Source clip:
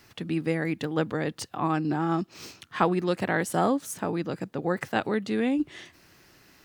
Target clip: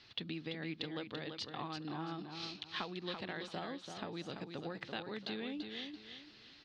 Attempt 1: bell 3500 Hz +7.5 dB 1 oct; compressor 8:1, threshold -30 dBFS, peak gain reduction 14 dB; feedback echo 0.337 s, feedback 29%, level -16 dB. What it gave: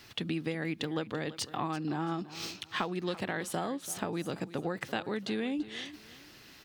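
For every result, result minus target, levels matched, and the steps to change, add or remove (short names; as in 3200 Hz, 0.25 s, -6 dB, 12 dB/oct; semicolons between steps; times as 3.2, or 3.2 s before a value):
echo-to-direct -9.5 dB; 4000 Hz band -5.0 dB
change: feedback echo 0.337 s, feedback 29%, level -6.5 dB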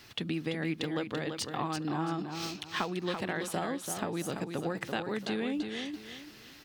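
4000 Hz band -5.0 dB
add after compressor: ladder low-pass 4800 Hz, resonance 50%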